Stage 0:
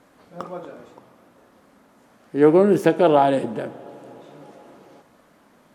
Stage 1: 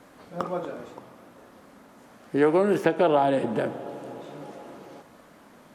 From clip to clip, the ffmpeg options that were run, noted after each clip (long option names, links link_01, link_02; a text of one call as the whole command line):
ffmpeg -i in.wav -filter_complex "[0:a]acrossover=split=620|3400[link_01][link_02][link_03];[link_01]acompressor=threshold=-27dB:ratio=4[link_04];[link_02]acompressor=threshold=-27dB:ratio=4[link_05];[link_03]acompressor=threshold=-53dB:ratio=4[link_06];[link_04][link_05][link_06]amix=inputs=3:normalize=0,volume=3.5dB" out.wav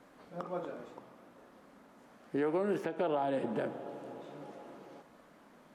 ffmpeg -i in.wav -af "equalizer=frequency=96:width_type=o:width=0.54:gain=-9,alimiter=limit=-16.5dB:level=0:latency=1:release=171,highshelf=frequency=5100:gain=-5.5,volume=-7dB" out.wav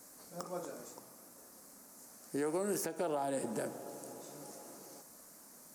ffmpeg -i in.wav -af "aexciter=amount=12.6:drive=7.3:freq=5000,volume=-3.5dB" out.wav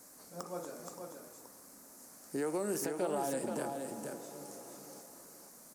ffmpeg -i in.wav -af "aecho=1:1:476:0.531" out.wav